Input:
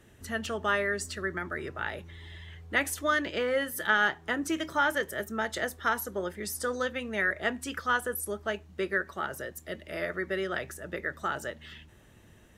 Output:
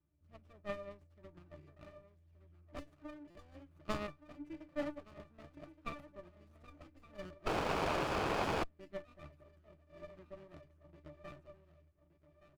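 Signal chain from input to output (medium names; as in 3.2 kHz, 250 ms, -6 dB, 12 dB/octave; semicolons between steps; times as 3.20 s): 2.79–3.32 s: compression 3:1, threshold -30 dBFS, peak gain reduction 7 dB; treble shelf 3.8 kHz +6 dB; on a send: feedback delay 1171 ms, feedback 44%, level -9 dB; on the sum: Chebyshev shaper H 2 -25 dB, 3 -10 dB, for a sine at -9 dBFS; pitch-class resonator D, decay 0.15 s; 7.46–8.64 s: painted sound noise 300–2600 Hz -45 dBFS; buffer glitch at 3.30 s, samples 256, times 8; sliding maximum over 17 samples; trim +12.5 dB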